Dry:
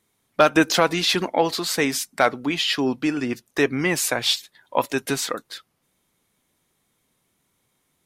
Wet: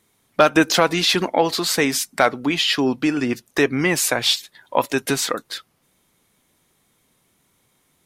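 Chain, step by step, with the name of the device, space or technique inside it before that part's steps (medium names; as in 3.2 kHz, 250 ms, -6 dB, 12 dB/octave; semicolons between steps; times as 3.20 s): parallel compression (in parallel at 0 dB: compression, threshold -27 dBFS, peak gain reduction 15.5 dB)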